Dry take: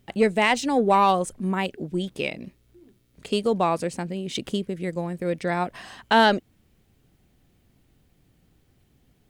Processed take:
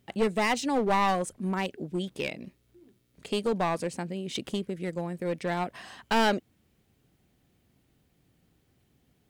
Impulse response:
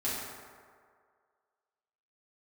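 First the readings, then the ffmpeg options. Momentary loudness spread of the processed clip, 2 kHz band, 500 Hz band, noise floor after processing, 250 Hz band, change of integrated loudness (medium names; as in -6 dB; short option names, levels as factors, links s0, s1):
10 LU, -6.0 dB, -5.5 dB, -70 dBFS, -4.5 dB, -5.5 dB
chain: -af "highpass=f=83:p=1,aeval=exprs='clip(val(0),-1,0.0891)':c=same,volume=0.668"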